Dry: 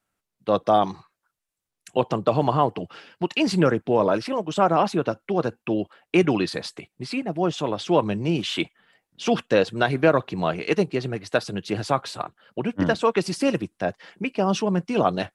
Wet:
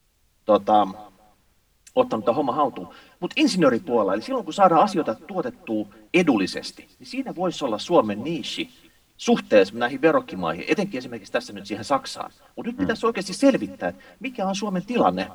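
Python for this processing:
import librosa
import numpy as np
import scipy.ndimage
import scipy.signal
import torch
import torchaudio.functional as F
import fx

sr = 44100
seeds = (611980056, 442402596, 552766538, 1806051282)

p1 = fx.tremolo_shape(x, sr, shape='triangle', hz=0.68, depth_pct=35)
p2 = fx.hum_notches(p1, sr, base_hz=50, count=5)
p3 = p2 + 0.76 * np.pad(p2, (int(3.8 * sr / 1000.0), 0))[:len(p2)]
p4 = fx.dmg_noise_colour(p3, sr, seeds[0], colour='pink', level_db=-55.0)
p5 = p4 + fx.echo_feedback(p4, sr, ms=250, feedback_pct=30, wet_db=-23.0, dry=0)
y = fx.band_widen(p5, sr, depth_pct=40)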